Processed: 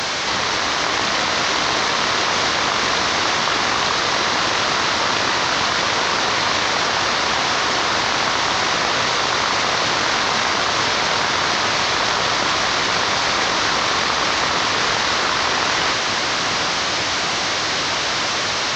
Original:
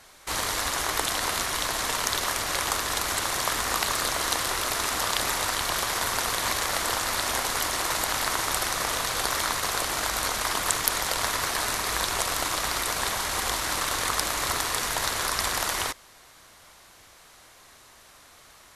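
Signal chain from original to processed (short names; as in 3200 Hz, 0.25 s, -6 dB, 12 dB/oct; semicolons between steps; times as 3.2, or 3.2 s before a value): delta modulation 32 kbps, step -27 dBFS; HPF 110 Hz 12 dB/oct; in parallel at +1 dB: negative-ratio compressor -31 dBFS, ratio -0.5; on the sum: diffused feedback echo 0.836 s, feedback 55%, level -5.5 dB; gain +3.5 dB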